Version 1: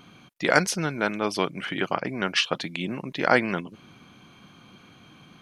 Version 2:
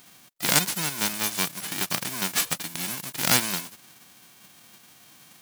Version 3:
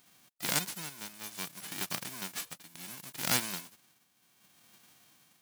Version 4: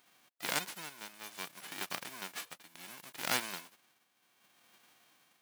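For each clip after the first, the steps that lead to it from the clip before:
spectral whitening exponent 0.1; gain -1 dB
tremolo triangle 0.67 Hz, depth 75%; gain -8 dB
tone controls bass -12 dB, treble -7 dB

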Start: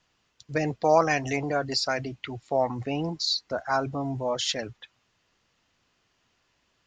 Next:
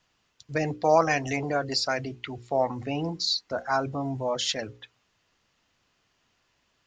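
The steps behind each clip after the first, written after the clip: notches 60/120/180/240/300/360/420/480/540 Hz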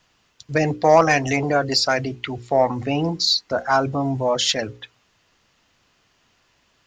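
soft clip -11 dBFS, distortion -21 dB; gain +8 dB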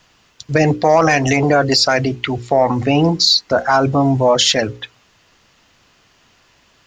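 maximiser +11.5 dB; gain -3 dB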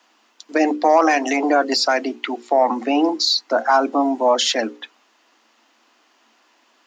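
rippled Chebyshev high-pass 220 Hz, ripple 6 dB

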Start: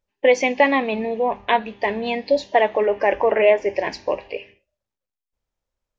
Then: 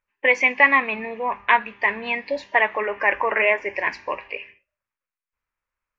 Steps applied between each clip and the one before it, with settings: band shelf 1600 Hz +14.5 dB; gain -8 dB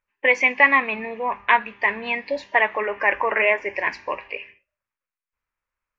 nothing audible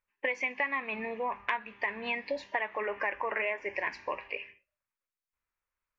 compressor 5:1, threshold -24 dBFS, peak gain reduction 13.5 dB; gain -5 dB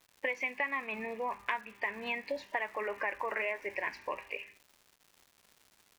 crackle 340/s -46 dBFS; gain -2.5 dB

